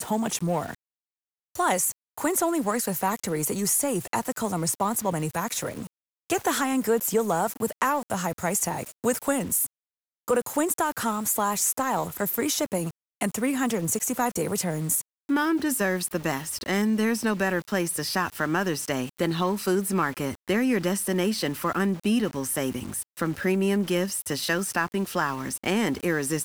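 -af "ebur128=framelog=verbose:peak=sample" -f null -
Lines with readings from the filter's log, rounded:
Integrated loudness:
  I:         -26.1 LUFS
  Threshold: -36.2 LUFS
Loudness range:
  LRA:         1.2 LU
  Threshold: -46.2 LUFS
  LRA low:   -26.8 LUFS
  LRA high:  -25.7 LUFS
Sample peak:
  Peak:      -10.4 dBFS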